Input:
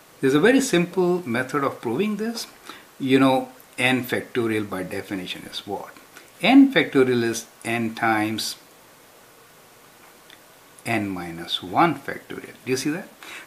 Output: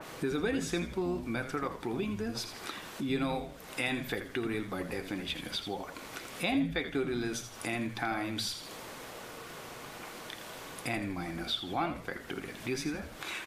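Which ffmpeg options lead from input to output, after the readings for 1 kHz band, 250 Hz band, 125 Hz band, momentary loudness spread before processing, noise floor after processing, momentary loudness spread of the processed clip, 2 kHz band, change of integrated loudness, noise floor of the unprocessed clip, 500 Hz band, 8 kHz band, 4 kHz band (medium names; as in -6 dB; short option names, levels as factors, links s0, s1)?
-12.5 dB, -13.5 dB, -9.5 dB, 17 LU, -47 dBFS, 12 LU, -11.5 dB, -13.5 dB, -51 dBFS, -13.0 dB, -9.0 dB, -8.0 dB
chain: -filter_complex "[0:a]acompressor=threshold=0.0141:ratio=2.5,highshelf=f=4900:g=-11,asplit=2[s0][s1];[s1]asplit=4[s2][s3][s4][s5];[s2]adelay=82,afreqshift=-110,volume=0.316[s6];[s3]adelay=164,afreqshift=-220,volume=0.12[s7];[s4]adelay=246,afreqshift=-330,volume=0.0457[s8];[s5]adelay=328,afreqshift=-440,volume=0.0174[s9];[s6][s7][s8][s9]amix=inputs=4:normalize=0[s10];[s0][s10]amix=inputs=2:normalize=0,acompressor=mode=upward:threshold=0.0126:ratio=2.5,adynamicequalizer=threshold=0.00251:dfrequency=2600:dqfactor=0.7:tfrequency=2600:tqfactor=0.7:attack=5:release=100:ratio=0.375:range=3.5:mode=boostabove:tftype=highshelf"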